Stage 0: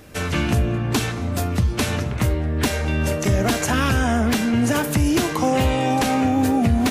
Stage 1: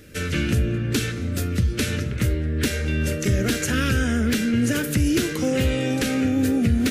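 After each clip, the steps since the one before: band shelf 860 Hz -15.5 dB 1 oct; gain -1.5 dB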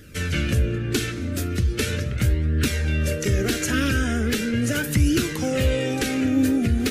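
flange 0.39 Hz, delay 0.6 ms, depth 2.8 ms, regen +42%; gain +4 dB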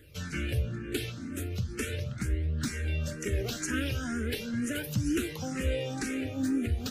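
endless phaser +2.1 Hz; gain -7 dB

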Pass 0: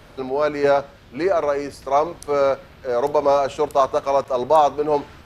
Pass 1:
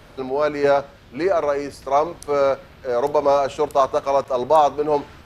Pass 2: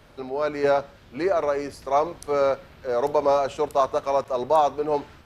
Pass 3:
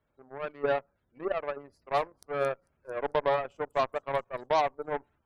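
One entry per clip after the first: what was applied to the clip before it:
nothing audible
AGC gain up to 4.5 dB; gain -6.5 dB
spectral gate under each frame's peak -20 dB strong; thin delay 0.223 s, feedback 65%, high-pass 5200 Hz, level -8 dB; added harmonics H 4 -26 dB, 7 -18 dB, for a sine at -8.5 dBFS; gain -6.5 dB

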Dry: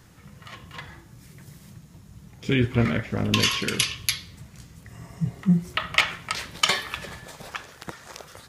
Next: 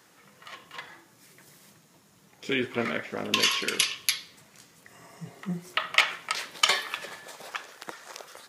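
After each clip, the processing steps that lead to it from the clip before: HPF 360 Hz 12 dB/oct; gain -1 dB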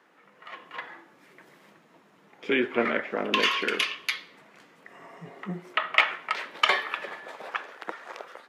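three-band isolator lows -23 dB, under 200 Hz, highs -20 dB, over 2900 Hz; AGC gain up to 5 dB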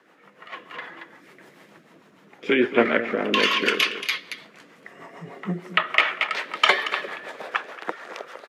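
on a send: echo 0.229 s -11 dB; on the sum: rotary speaker horn 6.7 Hz; gain +7 dB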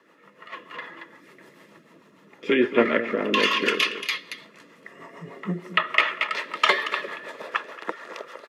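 notch comb 760 Hz

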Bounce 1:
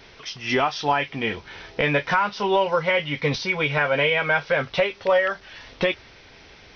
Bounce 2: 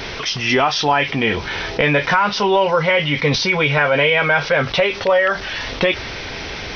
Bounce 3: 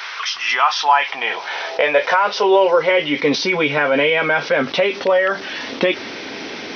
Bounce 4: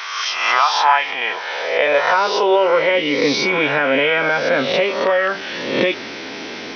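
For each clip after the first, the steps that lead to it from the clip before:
fast leveller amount 50%; gain +3.5 dB
high-pass sweep 1200 Hz -> 260 Hz, 0.4–3.58; gain -2 dB
spectral swells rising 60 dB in 0.91 s; gain -2.5 dB

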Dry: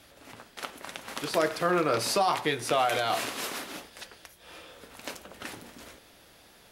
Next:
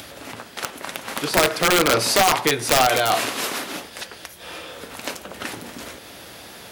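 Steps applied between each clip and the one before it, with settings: HPF 68 Hz 12 dB/oct; in parallel at -1 dB: upward compressor, threshold -33 dBFS; on the sum: wrapped overs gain 11.5 dB; gain +3 dB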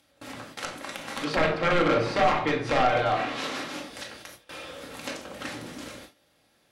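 shoebox room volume 690 m³, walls furnished, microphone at 2.2 m; treble ducked by the level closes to 2400 Hz, closed at -15 dBFS; gate with hold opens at -24 dBFS; gain -7.5 dB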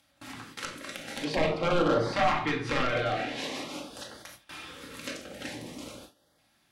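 LFO notch saw up 0.47 Hz 390–2700 Hz; gain -1.5 dB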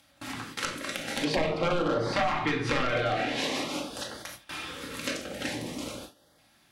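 compressor 6:1, threshold -29 dBFS, peak gain reduction 9.5 dB; gain +5.5 dB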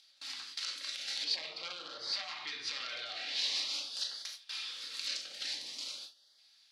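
limiter -21.5 dBFS, peak gain reduction 8 dB; band-pass 4500 Hz, Q 3.4; gain +7 dB

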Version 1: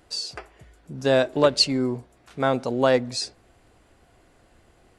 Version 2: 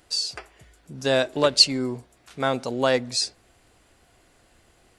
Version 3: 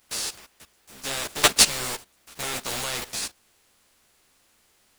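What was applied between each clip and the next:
high shelf 2000 Hz +8.5 dB; gain -3 dB
spectral contrast lowered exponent 0.24; level quantiser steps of 17 dB; ensemble effect; gain +7.5 dB

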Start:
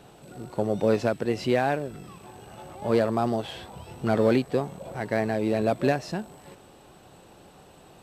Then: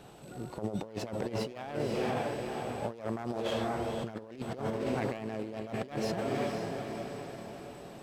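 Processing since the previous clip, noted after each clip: self-modulated delay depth 0.18 ms; on a send: diffused feedback echo 0.513 s, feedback 52%, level -7 dB; on the sum: negative-ratio compressor -29 dBFS, ratio -0.5; gain -5 dB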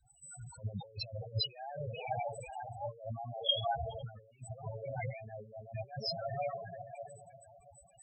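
passive tone stack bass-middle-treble 10-0-10; loudest bins only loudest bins 4; three-band expander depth 70%; gain +14.5 dB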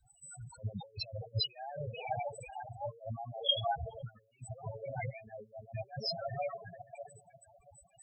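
reverb removal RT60 1.5 s; gain +1 dB

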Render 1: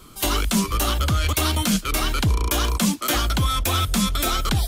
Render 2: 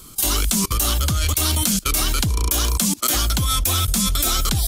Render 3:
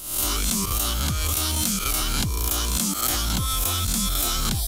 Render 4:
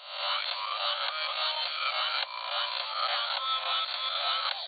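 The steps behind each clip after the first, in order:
tone controls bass +4 dB, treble +12 dB; level quantiser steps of 23 dB; gain +4 dB
spectral swells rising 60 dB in 0.72 s; gain -6.5 dB
overloaded stage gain 19 dB; brick-wall FIR band-pass 520–4600 Hz; gain +1 dB

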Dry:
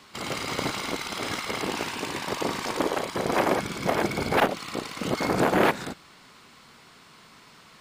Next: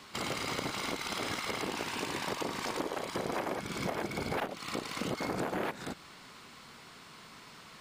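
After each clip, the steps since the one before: compressor 6:1, threshold -32 dBFS, peak gain reduction 15 dB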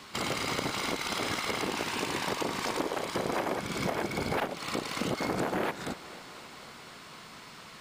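thinning echo 0.249 s, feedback 80%, high-pass 190 Hz, level -18 dB; gain +3.5 dB

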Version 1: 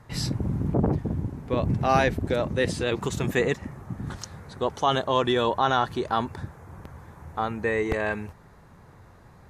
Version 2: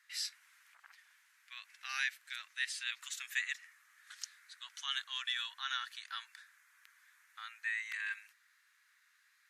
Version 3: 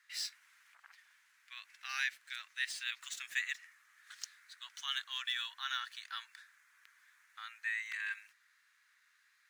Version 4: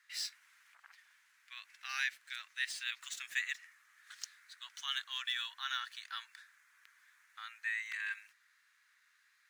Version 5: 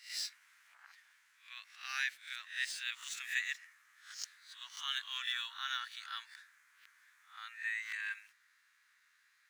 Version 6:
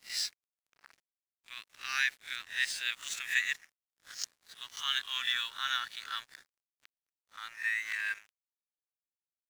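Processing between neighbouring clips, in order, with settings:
steep high-pass 1600 Hz 36 dB/oct; gain -5 dB
median filter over 3 samples
nothing audible
spectral swells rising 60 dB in 0.38 s; gain -1.5 dB
crossover distortion -56.5 dBFS; gain +6.5 dB

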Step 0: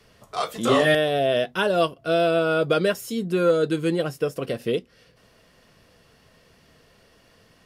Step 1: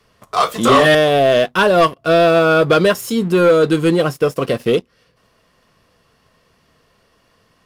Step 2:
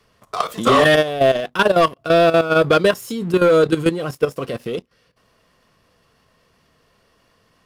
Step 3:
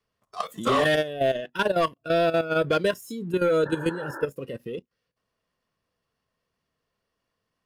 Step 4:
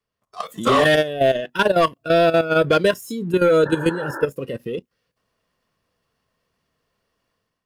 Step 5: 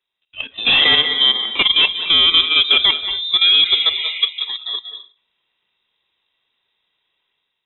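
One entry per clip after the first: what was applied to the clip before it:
bell 1100 Hz +7 dB 0.42 oct; sample leveller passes 2; gain +2 dB
level quantiser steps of 12 dB
painted sound noise, 3.65–4.26, 270–1800 Hz -27 dBFS; spectral noise reduction 12 dB; gain -8.5 dB
AGC gain up to 10.5 dB; gain -3.5 dB
on a send at -9 dB: reverb RT60 0.40 s, pre-delay 0.175 s; on the sum: inverted band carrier 3800 Hz; gain +2 dB

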